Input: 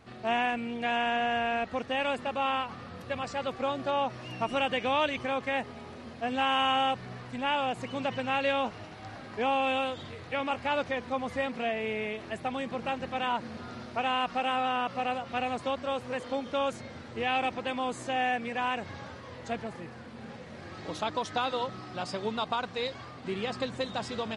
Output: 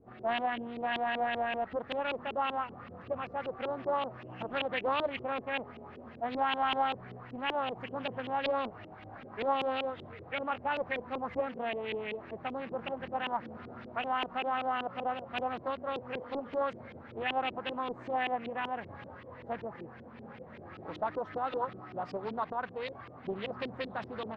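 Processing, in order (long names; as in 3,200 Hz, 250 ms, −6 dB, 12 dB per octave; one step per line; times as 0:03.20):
auto-filter low-pass saw up 5.2 Hz 340–3,100 Hz
highs frequency-modulated by the lows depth 0.39 ms
level −6 dB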